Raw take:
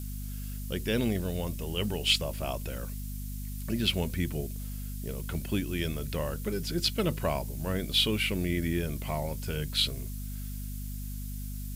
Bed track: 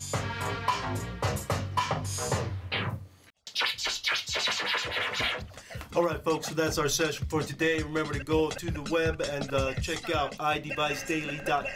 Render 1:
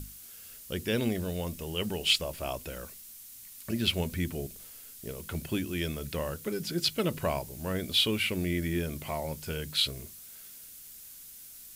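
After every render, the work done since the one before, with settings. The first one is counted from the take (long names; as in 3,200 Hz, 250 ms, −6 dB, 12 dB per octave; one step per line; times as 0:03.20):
mains-hum notches 50/100/150/200/250 Hz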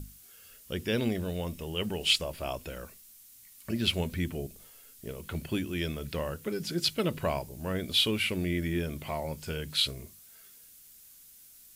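noise reduction from a noise print 6 dB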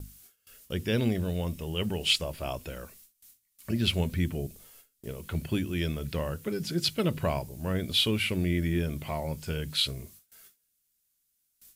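dynamic equaliser 110 Hz, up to +6 dB, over −45 dBFS, Q 0.83
noise gate with hold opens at −42 dBFS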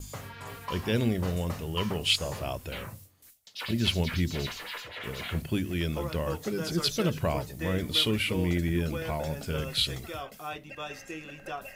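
mix in bed track −10 dB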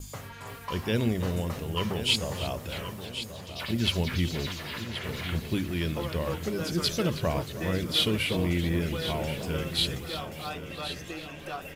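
repeating echo 1,078 ms, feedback 42%, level −11 dB
feedback echo with a swinging delay time 316 ms, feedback 64%, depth 137 cents, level −14.5 dB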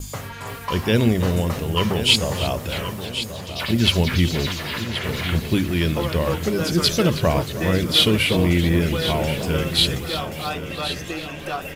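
level +9 dB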